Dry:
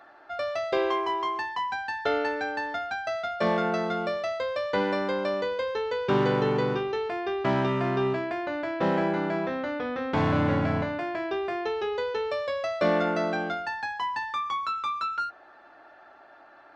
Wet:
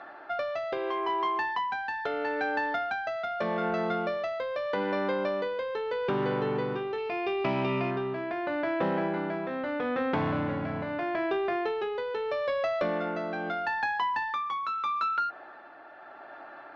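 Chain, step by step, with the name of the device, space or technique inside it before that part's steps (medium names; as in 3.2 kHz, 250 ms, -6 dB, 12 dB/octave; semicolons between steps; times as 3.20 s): AM radio (band-pass 110–3500 Hz; compression, threshold -32 dBFS, peak gain reduction 12.5 dB; saturation -23.5 dBFS, distortion -27 dB; tremolo 0.79 Hz, depth 40%); 6.98–7.91 s: graphic EQ with 31 bands 1.6 kHz -10 dB, 2.5 kHz +11 dB, 5 kHz +8 dB; trim +7 dB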